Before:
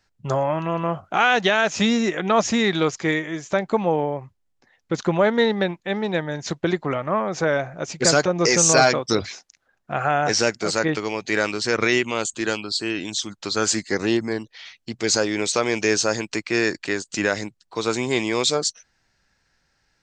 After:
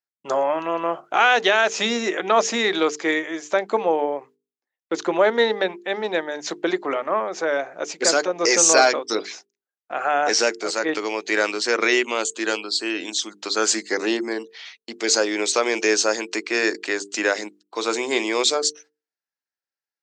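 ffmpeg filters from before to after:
-filter_complex "[0:a]asettb=1/sr,asplit=3[s0][s1][s2];[s0]atrim=end=6.994[s3];[s1]atrim=start=6.99:end=10.88,asetpts=PTS-STARTPTS,afade=t=in:d=0.004:c=qsin,afade=t=out:st=3.886:d=0.004:c=qsin,tremolo=f=1.2:d=0.31[s4];[s2]atrim=start=10.876[s5];[s3][s4]acrossfade=d=0.004:c1=hsin:c2=qsin[s6];[s6][s5]acrossfade=d=0.004:c1=qsin:c2=hsin,agate=range=0.0355:threshold=0.00562:ratio=16:detection=peak,highpass=f=290:w=0.5412,highpass=f=290:w=1.3066,bandreject=f=50:t=h:w=6,bandreject=f=100:t=h:w=6,bandreject=f=150:t=h:w=6,bandreject=f=200:t=h:w=6,bandreject=f=250:t=h:w=6,bandreject=f=300:t=h:w=6,bandreject=f=350:t=h:w=6,bandreject=f=400:t=h:w=6,bandreject=f=450:t=h:w=6,volume=1.19"

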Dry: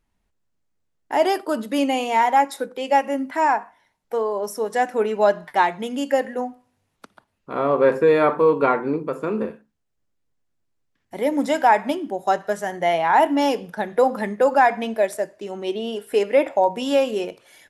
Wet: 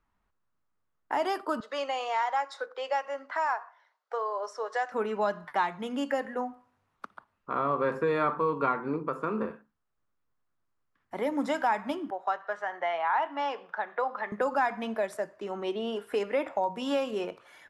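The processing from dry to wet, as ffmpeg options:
-filter_complex "[0:a]asettb=1/sr,asplit=3[s0][s1][s2];[s0]atrim=end=1.604[s3];[s1]atrim=start=1.6:end=4.92,asetpts=PTS-STARTPTS,afade=t=in:d=0.004:c=qsin,afade=t=out:st=3.316:d=0.004:c=qsin,highpass=f=490:w=0.5412,highpass=f=490:w=1.3066,equalizer=f=890:t=q:w=4:g=-5,equalizer=f=2400:t=q:w=4:g=-4,equalizer=f=4600:t=q:w=4:g=4,lowpass=f=7200:w=0.5412,lowpass=f=7200:w=1.3066[s4];[s2]atrim=start=4.916[s5];[s3][s4]acrossfade=d=0.004:c1=hsin:c2=qsin[s6];[s6][s5]acrossfade=d=0.004:c1=qsin:c2=hsin,asettb=1/sr,asplit=3[s7][s8][s9];[s7]atrim=end=12.104[s10];[s8]atrim=start=12.1:end=14.32,asetpts=PTS-STARTPTS,afade=t=in:d=0.004:c=qsin,afade=t=out:st=2.216:d=0.004:c=qsin,highpass=620,lowpass=3200[s11];[s9]atrim=start=14.316[s12];[s10][s11]acrossfade=d=0.004:c1=hsin:c2=qsin[s13];[s13][s12]acrossfade=d=0.004:c1=qsin:c2=hsin,lowpass=f=3900:p=1,equalizer=f=1200:t=o:w=0.97:g=12.5,acrossover=split=240|3000[s14][s15][s16];[s15]acompressor=threshold=0.0562:ratio=2.5[s17];[s14][s17][s16]amix=inputs=3:normalize=0,volume=0.531"

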